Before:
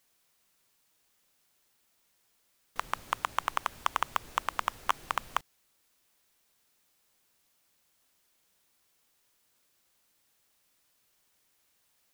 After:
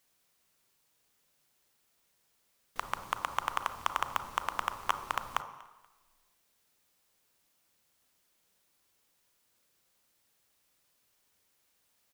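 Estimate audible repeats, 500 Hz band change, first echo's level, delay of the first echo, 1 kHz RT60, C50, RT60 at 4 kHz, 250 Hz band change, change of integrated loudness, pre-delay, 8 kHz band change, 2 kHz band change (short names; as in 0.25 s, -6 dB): 2, -1.0 dB, -22.5 dB, 0.24 s, 1.2 s, 10.5 dB, 1.2 s, -0.5 dB, -1.5 dB, 31 ms, -2.0 dB, -2.0 dB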